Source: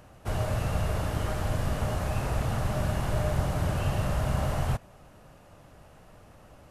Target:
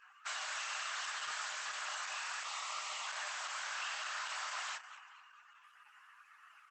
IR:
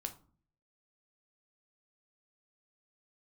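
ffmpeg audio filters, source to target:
-filter_complex "[0:a]asplit=3[a][b][c];[a]afade=t=out:st=2.4:d=0.02[d];[b]asuperstop=centerf=1600:order=20:qfactor=3.6,afade=t=in:st=2.4:d=0.02,afade=t=out:st=3.06:d=0.02[e];[c]afade=t=in:st=3.06:d=0.02[f];[d][e][f]amix=inputs=3:normalize=0,flanger=delay=19.5:depth=6.7:speed=0.67,highpass=f=1.2k:w=0.5412,highpass=f=1.2k:w=1.3066,asettb=1/sr,asplit=3[g][h][i];[g]atrim=end=3.724[j];[h]atrim=start=3.72:end=4.3,asetpts=PTS-STARTPTS,afade=t=in:d=0.004:c=qsin,afade=t=out:st=0.576:d=0.004:c=qsin,equalizer=f=11k:w=2:g=-8[k];[i]atrim=start=4.296[l];[j][k]acrossfade=d=0.004:c1=hsin:c2=qsin[m];[m][l]acrossfade=d=0.004:c1=qsin:c2=hsin,aecho=1:1:217|434|651|868|1085:0.133|0.072|0.0389|0.021|0.0113,asettb=1/sr,asplit=3[n][o][p];[n]atrim=end=1.134[q];[o]atrim=start=1.13:end=1.86,asetpts=PTS-STARTPTS,afade=t=in:d=0.004:c=qsin,afade=t=out:st=0.726:d=0.004:c=qsin,asoftclip=type=hard:threshold=-40dB[r];[p]atrim=start=1.856[s];[q][r]acrossfade=d=0.004:c1=hsin:c2=qsin[t];[t][s]acrossfade=d=0.004:c1=qsin:c2=hsin,highshelf=f=4.1k:g=4.5,afftdn=nr=21:nf=-63,acompressor=threshold=-48dB:ratio=3,volume=10dB" -ar 48000 -c:a libopus -b:a 12k

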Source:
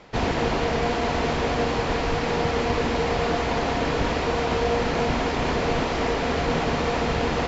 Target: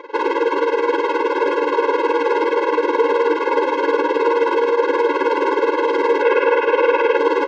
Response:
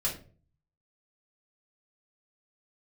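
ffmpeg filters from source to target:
-filter_complex "[0:a]highshelf=f=2.7k:g=-10.5,alimiter=limit=-15dB:level=0:latency=1:release=336,tremolo=f=19:d=0.81,asplit=2[a][b];[b]highpass=f=720:p=1,volume=31dB,asoftclip=type=tanh:threshold=-3.5dB[c];[a][c]amix=inputs=2:normalize=0,lowpass=f=1.2k:p=1,volume=-6dB,asettb=1/sr,asplit=3[d][e][f];[d]atrim=end=6.224[g];[e]atrim=start=6.22:end=7.17,asetpts=PTS-STARTPTS,afade=t=in:d=0.004:c=qsin,afade=t=out:st=0.946:d=0.004:c=qsin,highpass=f=370:w=0.5412,highpass=f=370:w=1.3066,equalizer=f=490:t=q:w=4:g=5,equalizer=f=1.5k:t=q:w=4:g=4,equalizer=f=2.5k:t=q:w=4:g=9,equalizer=f=4.2k:t=q:w=4:g=-6,lowpass=f=5.7k:w=0.5412,lowpass=f=5.7k:w=1.3066[h];[f]atrim=start=7.166[i];[g][h]acrossfade=d=0.004:c1=hsin:c2=qsin[j];[j][i]acrossfade=d=0.004:c1=qsin:c2=hsin,asplit=2[k][l];[l]adelay=1224,volume=-6dB,highshelf=f=4k:g=-27.6[m];[k][m]amix=inputs=2:normalize=0,afftfilt=real='re*eq(mod(floor(b*sr/1024/280),2),1)':imag='im*eq(mod(floor(b*sr/1024/280),2),1)':win_size=1024:overlap=0.75"

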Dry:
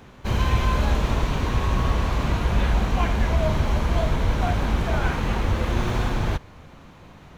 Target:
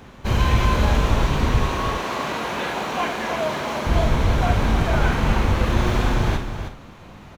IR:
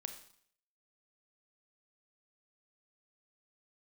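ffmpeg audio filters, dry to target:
-filter_complex "[0:a]asettb=1/sr,asplit=3[a][b][c];[a]atrim=end=1.664[d];[b]atrim=start=1.66:end=3.87,asetpts=PTS-STARTPTS,afade=t=in:d=0.004:c=qsin,afade=t=out:st=2.206:d=0.004:c=qsin,highpass=320[e];[c]atrim=start=3.866[f];[d][e]acrossfade=d=0.004:c1=hsin:c2=qsin[g];[g][f]acrossfade=d=0.004:c1=qsin:c2=hsin,aecho=1:1:315:0.355[h];[1:a]atrim=start_sample=2205,atrim=end_sample=3528[i];[h][i]afir=irnorm=-1:irlink=0,volume=6.5dB"

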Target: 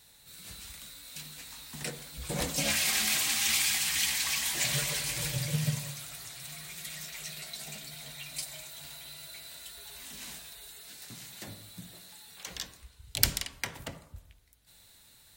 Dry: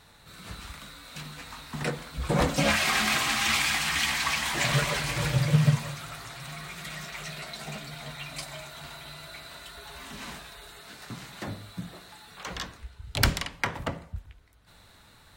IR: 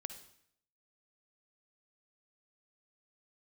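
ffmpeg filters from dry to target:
-filter_complex "[0:a]crystalizer=i=7:c=0,asplit=2[a][b];[b]lowpass=f=1.3k:w=0.5412,lowpass=f=1.3k:w=1.3066[c];[1:a]atrim=start_sample=2205,asetrate=32634,aresample=44100[d];[c][d]afir=irnorm=-1:irlink=0,volume=-2.5dB[e];[a][e]amix=inputs=2:normalize=0,volume=-14dB"

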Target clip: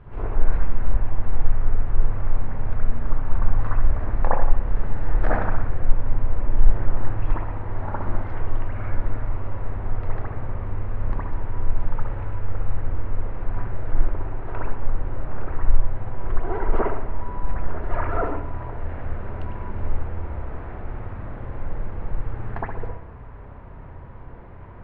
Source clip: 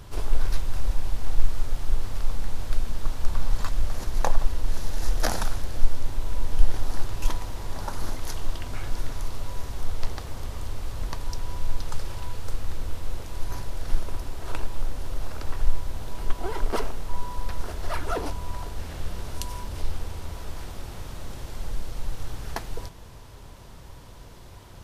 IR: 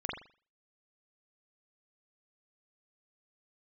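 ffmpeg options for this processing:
-filter_complex "[0:a]lowpass=f=2.2k:w=0.5412,lowpass=f=2.2k:w=1.3066[a];[1:a]atrim=start_sample=2205,asetrate=29988,aresample=44100[b];[a][b]afir=irnorm=-1:irlink=0,volume=-2.5dB"

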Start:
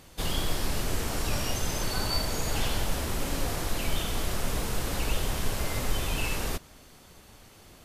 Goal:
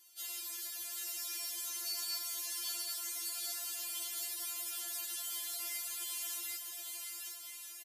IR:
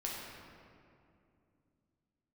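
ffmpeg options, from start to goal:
-af "aderivative,aecho=1:1:770|1348|1781|2105|2349:0.631|0.398|0.251|0.158|0.1,afftfilt=real='re*4*eq(mod(b,16),0)':imag='im*4*eq(mod(b,16),0)':win_size=2048:overlap=0.75,volume=-2dB"

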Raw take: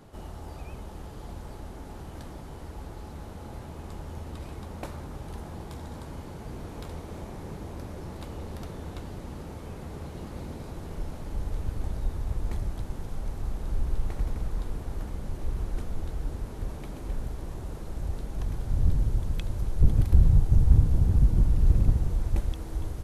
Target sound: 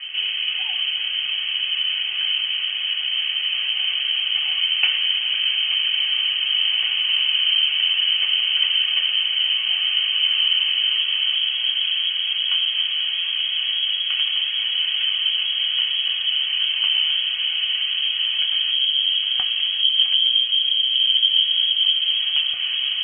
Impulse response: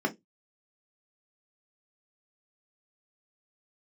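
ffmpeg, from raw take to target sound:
-filter_complex "[0:a]asplit=2[a][b];[b]acompressor=threshold=-29dB:ratio=6,volume=2.5dB[c];[a][c]amix=inputs=2:normalize=0,alimiter=limit=-12dB:level=0:latency=1:release=243[d];[1:a]atrim=start_sample=2205,asetrate=41013,aresample=44100[e];[d][e]afir=irnorm=-1:irlink=0,lowpass=f=2.8k:t=q:w=0.5098,lowpass=f=2.8k:t=q:w=0.6013,lowpass=f=2.8k:t=q:w=0.9,lowpass=f=2.8k:t=q:w=2.563,afreqshift=-3300"

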